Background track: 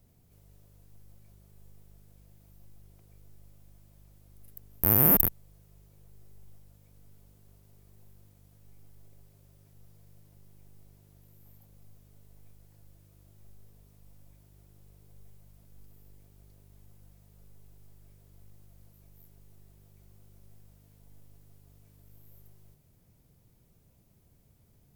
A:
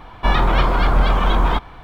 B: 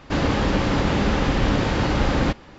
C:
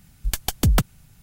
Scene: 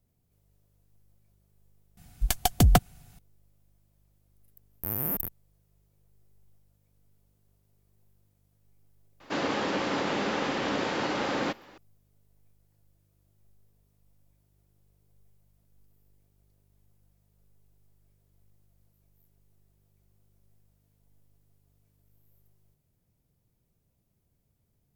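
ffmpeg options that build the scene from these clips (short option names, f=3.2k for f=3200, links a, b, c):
-filter_complex "[0:a]volume=-10dB[a];[3:a]equalizer=f=720:w=7.1:g=12.5[b];[2:a]highpass=290[c];[b]atrim=end=1.22,asetpts=PTS-STARTPTS,volume=-1.5dB,afade=t=in:d=0.004:c=hsin,afade=t=out:st=1.216:d=0.004:c=hsin,adelay=1970[d];[c]atrim=end=2.58,asetpts=PTS-STARTPTS,volume=-5dB,afade=t=in:d=0.004:c=hsin,afade=t=out:st=2.576:d=0.004:c=hsin,adelay=9200[e];[a][d][e]amix=inputs=3:normalize=0"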